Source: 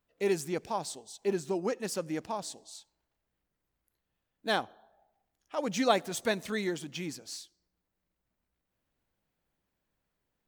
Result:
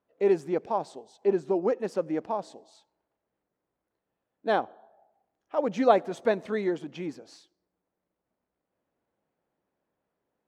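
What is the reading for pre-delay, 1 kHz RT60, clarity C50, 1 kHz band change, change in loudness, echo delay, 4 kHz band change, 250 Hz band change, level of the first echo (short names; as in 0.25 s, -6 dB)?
none, none, none, +5.0 dB, +5.0 dB, none, -8.0 dB, +4.0 dB, none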